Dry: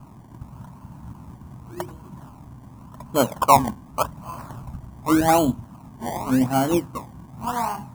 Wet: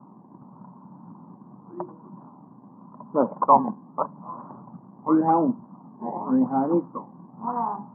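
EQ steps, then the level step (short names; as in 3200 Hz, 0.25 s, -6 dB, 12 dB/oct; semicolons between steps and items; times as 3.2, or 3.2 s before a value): elliptic band-pass 180–1100 Hz, stop band 60 dB; air absorption 140 m; notch 660 Hz, Q 12; 0.0 dB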